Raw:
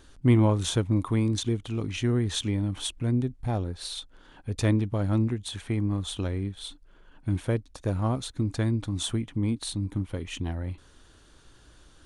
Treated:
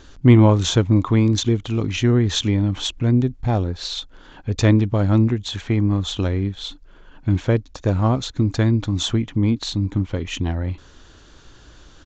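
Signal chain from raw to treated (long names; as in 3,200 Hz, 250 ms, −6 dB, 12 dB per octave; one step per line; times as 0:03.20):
downsampling to 16,000 Hz
level +8.5 dB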